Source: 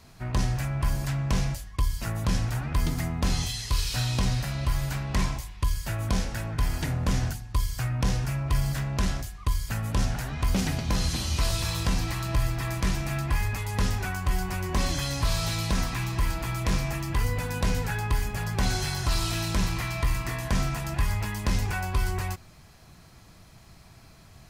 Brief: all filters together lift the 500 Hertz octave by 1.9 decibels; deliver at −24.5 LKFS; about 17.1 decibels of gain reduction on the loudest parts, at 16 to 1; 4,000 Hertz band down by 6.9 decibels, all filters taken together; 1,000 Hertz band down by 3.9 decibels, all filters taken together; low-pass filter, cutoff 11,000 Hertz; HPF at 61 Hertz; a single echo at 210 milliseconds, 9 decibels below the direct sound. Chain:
high-pass filter 61 Hz
low-pass filter 11,000 Hz
parametric band 500 Hz +4.5 dB
parametric band 1,000 Hz −6 dB
parametric band 4,000 Hz −8.5 dB
downward compressor 16 to 1, threshold −40 dBFS
single-tap delay 210 ms −9 dB
level +20 dB

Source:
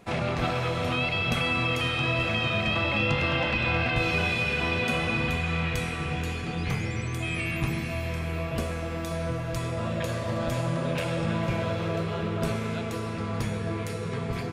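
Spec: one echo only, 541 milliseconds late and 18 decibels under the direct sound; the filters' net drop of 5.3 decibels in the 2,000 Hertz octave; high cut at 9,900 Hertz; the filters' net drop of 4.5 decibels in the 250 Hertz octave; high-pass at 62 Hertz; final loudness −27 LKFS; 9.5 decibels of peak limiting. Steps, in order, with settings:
high-pass filter 62 Hz
low-pass filter 9,900 Hz
parametric band 250 Hz −7 dB
parametric band 2,000 Hz −7.5 dB
brickwall limiter −25 dBFS
single-tap delay 541 ms −18 dB
level +6.5 dB

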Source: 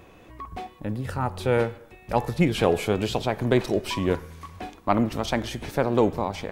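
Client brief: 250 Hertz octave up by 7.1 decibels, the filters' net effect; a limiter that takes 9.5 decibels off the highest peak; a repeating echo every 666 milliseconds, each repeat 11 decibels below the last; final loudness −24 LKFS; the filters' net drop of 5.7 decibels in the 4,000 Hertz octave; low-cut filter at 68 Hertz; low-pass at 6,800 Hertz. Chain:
high-pass filter 68 Hz
low-pass filter 6,800 Hz
parametric band 250 Hz +9 dB
parametric band 4,000 Hz −7.5 dB
brickwall limiter −13 dBFS
repeating echo 666 ms, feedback 28%, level −11 dB
level +1.5 dB

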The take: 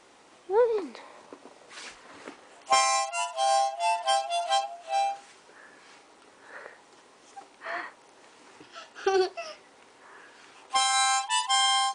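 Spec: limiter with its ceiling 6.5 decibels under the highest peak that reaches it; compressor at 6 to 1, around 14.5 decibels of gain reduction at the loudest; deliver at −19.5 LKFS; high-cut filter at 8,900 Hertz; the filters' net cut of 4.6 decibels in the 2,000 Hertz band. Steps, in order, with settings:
low-pass filter 8,900 Hz
parametric band 2,000 Hz −6 dB
downward compressor 6 to 1, threshold −35 dBFS
level +22.5 dB
brickwall limiter −8 dBFS

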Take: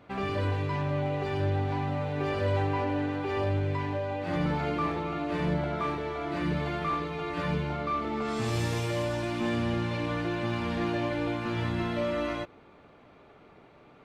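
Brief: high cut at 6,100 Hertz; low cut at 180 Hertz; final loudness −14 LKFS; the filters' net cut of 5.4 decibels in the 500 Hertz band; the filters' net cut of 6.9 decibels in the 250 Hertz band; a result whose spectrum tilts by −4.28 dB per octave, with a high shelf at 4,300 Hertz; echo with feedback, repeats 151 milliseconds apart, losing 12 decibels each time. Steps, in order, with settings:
high-pass filter 180 Hz
low-pass filter 6,100 Hz
parametric band 250 Hz −6 dB
parametric band 500 Hz −5 dB
high-shelf EQ 4,300 Hz −6.5 dB
repeating echo 151 ms, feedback 25%, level −12 dB
level +21.5 dB

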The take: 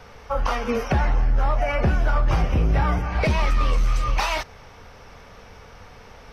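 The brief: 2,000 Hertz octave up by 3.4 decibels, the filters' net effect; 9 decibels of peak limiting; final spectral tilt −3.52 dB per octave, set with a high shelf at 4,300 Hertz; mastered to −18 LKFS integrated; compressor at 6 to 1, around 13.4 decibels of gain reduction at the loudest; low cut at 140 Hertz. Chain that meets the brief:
high-pass filter 140 Hz
parametric band 2,000 Hz +5 dB
high-shelf EQ 4,300 Hz −3.5 dB
downward compressor 6 to 1, threshold −33 dBFS
level +22 dB
brickwall limiter −8.5 dBFS

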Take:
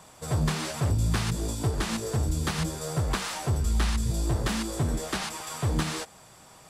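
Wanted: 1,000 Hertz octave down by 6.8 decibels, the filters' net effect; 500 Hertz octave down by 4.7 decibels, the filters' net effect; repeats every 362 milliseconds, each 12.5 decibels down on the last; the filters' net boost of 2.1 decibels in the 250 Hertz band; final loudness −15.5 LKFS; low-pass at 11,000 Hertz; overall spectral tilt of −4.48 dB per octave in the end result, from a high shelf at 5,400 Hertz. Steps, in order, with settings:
low-pass filter 11,000 Hz
parametric band 250 Hz +5 dB
parametric band 500 Hz −6.5 dB
parametric band 1,000 Hz −7.5 dB
high-shelf EQ 5,400 Hz +5 dB
repeating echo 362 ms, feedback 24%, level −12.5 dB
level +12.5 dB

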